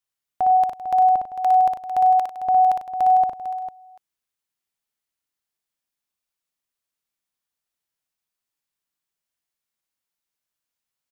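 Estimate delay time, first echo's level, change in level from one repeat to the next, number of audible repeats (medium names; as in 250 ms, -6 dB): 59 ms, -4.5 dB, no regular repeats, 4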